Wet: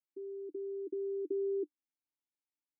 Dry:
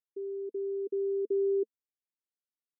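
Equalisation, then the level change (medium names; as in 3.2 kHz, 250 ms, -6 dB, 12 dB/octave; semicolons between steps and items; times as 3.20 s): dynamic bell 350 Hz, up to +5 dB, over -47 dBFS, Q 5.8; vowel filter u; +7.0 dB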